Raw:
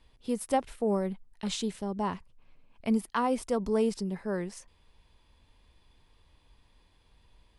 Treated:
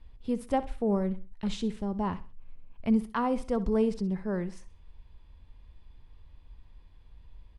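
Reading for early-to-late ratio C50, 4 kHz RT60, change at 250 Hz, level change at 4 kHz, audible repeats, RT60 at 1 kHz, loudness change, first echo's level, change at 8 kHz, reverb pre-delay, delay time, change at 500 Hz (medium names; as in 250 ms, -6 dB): no reverb, no reverb, +2.5 dB, -5.0 dB, 2, no reverb, +0.5 dB, -16.0 dB, under -10 dB, no reverb, 64 ms, -0.5 dB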